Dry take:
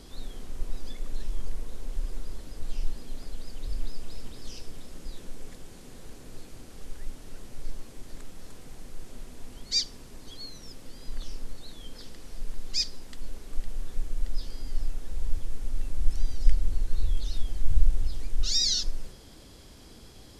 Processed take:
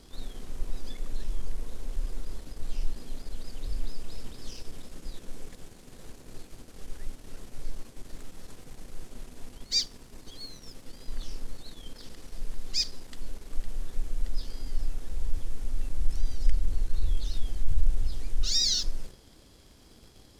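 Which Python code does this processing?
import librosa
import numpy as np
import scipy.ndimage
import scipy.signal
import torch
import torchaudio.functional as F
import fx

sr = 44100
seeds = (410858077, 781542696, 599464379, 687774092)

y = fx.leveller(x, sr, passes=1)
y = y * librosa.db_to_amplitude(-4.0)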